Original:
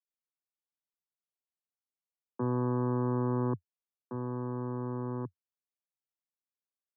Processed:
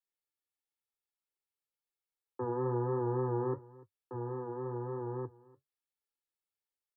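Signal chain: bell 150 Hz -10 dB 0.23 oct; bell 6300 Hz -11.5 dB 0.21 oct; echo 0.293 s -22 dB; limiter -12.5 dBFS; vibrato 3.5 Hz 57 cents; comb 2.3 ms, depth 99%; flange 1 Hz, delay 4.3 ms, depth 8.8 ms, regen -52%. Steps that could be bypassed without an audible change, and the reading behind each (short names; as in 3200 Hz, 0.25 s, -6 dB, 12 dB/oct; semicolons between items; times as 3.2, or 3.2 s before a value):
bell 6300 Hz: input band ends at 1300 Hz; limiter -12.5 dBFS: input peak -20.5 dBFS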